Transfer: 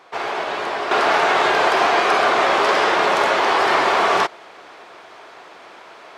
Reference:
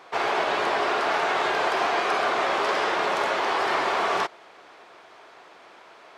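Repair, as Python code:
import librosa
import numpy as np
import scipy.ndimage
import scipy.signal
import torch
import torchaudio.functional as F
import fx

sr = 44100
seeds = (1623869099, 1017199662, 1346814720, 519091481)

y = fx.fix_level(x, sr, at_s=0.91, step_db=-7.5)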